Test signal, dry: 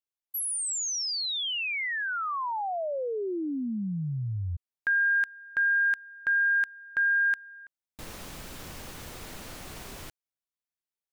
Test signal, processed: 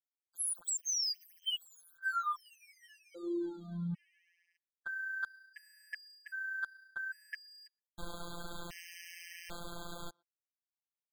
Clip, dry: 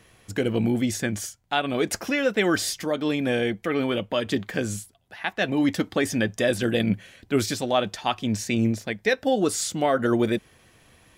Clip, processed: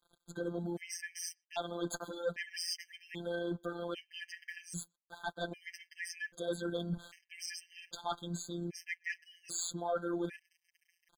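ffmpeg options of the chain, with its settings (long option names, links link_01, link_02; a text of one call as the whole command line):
ffmpeg -i in.wav -filter_complex "[0:a]tremolo=f=29:d=0.261,adynamicequalizer=threshold=0.00708:dfrequency=2700:dqfactor=1.8:tfrequency=2700:tqfactor=1.8:attack=5:release=100:ratio=0.375:range=2:mode=cutabove:tftype=bell,asplit=2[link_01][link_02];[link_02]adynamicsmooth=sensitivity=8:basefreq=6600,volume=-1.5dB[link_03];[link_01][link_03]amix=inputs=2:normalize=0,aeval=exprs='sgn(val(0))*max(abs(val(0))-0.00531,0)':channel_layout=same,areverse,acompressor=threshold=-34dB:ratio=4:attack=15:release=312:knee=6:detection=peak,areverse,afftfilt=real='hypot(re,im)*cos(PI*b)':imag='0':win_size=1024:overlap=0.75,asoftclip=type=tanh:threshold=-26.5dB,equalizer=frequency=190:width=0.36:gain=-5,asplit=2[link_04][link_05];[link_05]adelay=120,highpass=300,lowpass=3400,asoftclip=type=hard:threshold=-35.5dB,volume=-30dB[link_06];[link_04][link_06]amix=inputs=2:normalize=0,afftfilt=real='re*gt(sin(2*PI*0.63*pts/sr)*(1-2*mod(floor(b*sr/1024/1600),2)),0)':imag='im*gt(sin(2*PI*0.63*pts/sr)*(1-2*mod(floor(b*sr/1024/1600),2)),0)':win_size=1024:overlap=0.75,volume=5.5dB" out.wav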